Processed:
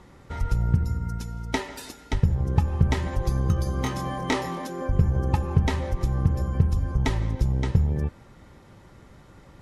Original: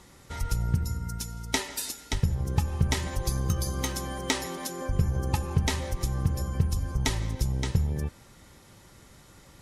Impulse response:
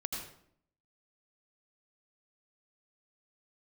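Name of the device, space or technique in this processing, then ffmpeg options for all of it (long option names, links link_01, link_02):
through cloth: -filter_complex "[0:a]highshelf=frequency=3500:gain=-17.5,asettb=1/sr,asplit=3[link_01][link_02][link_03];[link_01]atrim=end=3.824[link_04];[link_02]atrim=start=3.82:end=4.62,asetpts=PTS-STARTPTS,afade=type=in:duration=0.004:curve=qsin,afade=type=out:start_time=0.796:duration=0.004:curve=qsin,asplit=2[link_05][link_06];[link_06]adelay=24,volume=-2dB[link_07];[link_05][link_07]amix=inputs=2:normalize=0,atrim=end_sample=35280[link_08];[link_03]atrim=start=4.616[link_09];[link_04][link_08]acrossfade=duration=0.004:curve1=hsin:curve2=qsin[link_10];[link_10][link_09]acrossfade=duration=0.004:curve1=qsin:curve2=hsin,volume=4.5dB"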